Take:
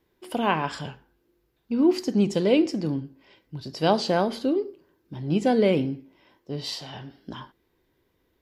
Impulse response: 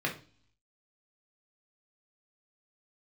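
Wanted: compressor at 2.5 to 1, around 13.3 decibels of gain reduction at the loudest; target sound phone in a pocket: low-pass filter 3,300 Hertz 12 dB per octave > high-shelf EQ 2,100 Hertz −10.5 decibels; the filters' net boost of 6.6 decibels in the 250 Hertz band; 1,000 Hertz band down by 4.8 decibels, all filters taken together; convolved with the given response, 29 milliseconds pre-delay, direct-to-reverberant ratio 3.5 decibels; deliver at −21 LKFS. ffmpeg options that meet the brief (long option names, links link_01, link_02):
-filter_complex "[0:a]equalizer=frequency=250:width_type=o:gain=9,equalizer=frequency=1000:width_type=o:gain=-5.5,acompressor=threshold=-31dB:ratio=2.5,asplit=2[link_01][link_02];[1:a]atrim=start_sample=2205,adelay=29[link_03];[link_02][link_03]afir=irnorm=-1:irlink=0,volume=-11dB[link_04];[link_01][link_04]amix=inputs=2:normalize=0,lowpass=3300,highshelf=frequency=2100:gain=-10.5,volume=9.5dB"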